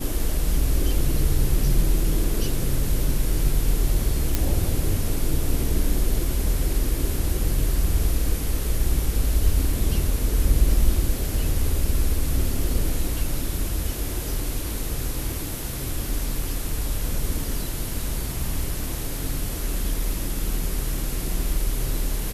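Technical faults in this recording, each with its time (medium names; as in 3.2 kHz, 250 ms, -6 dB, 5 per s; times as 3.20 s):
4.35 s: pop -6 dBFS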